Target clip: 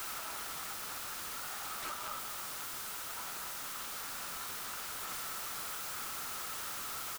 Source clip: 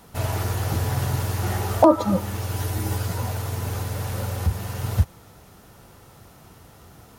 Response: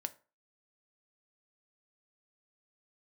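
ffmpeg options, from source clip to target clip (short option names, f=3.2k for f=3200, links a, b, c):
-filter_complex "[0:a]acompressor=threshold=-28dB:ratio=6,highpass=f=740:w=0.5412,highpass=f=740:w=1.3066,asplit=2[a][b];[b]highpass=f=720:p=1,volume=32dB,asoftclip=type=tanh:threshold=-25dB[c];[a][c]amix=inputs=2:normalize=0,lowpass=f=7.2k:p=1,volume=-6dB,asettb=1/sr,asplit=3[d][e][f];[d]atrim=end=1.354[g];[e]atrim=start=1.35:end=3.8,asetpts=PTS-STARTPTS,afade=t=in:d=0.004:c=qsin,afade=t=out:st=2.446:d=0.004:c=qsin,highshelf=f=7.3k:g=-2.5[h];[f]atrim=start=3.796[i];[g][h]acrossfade=d=0.004:c1=hsin:c2=qsin[j];[j][i]acrossfade=d=0.004:c1=qsin:c2=hsin,aecho=1:1:205:0.126,aeval=exprs='(mod(70.8*val(0)+1,2)-1)/70.8':c=same,equalizer=f=1.3k:w=3.3:g=10"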